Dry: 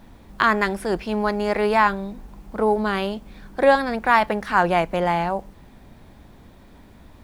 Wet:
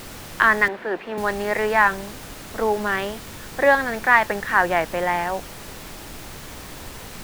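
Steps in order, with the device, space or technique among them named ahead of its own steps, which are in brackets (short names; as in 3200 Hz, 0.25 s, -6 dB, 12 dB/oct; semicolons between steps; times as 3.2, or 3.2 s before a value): horn gramophone (BPF 250–3600 Hz; bell 1800 Hz +10.5 dB 0.36 oct; wow and flutter; pink noise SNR 14 dB); 0.68–1.18 three-band isolator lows -22 dB, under 200 Hz, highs -21 dB, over 3300 Hz; gain -1.5 dB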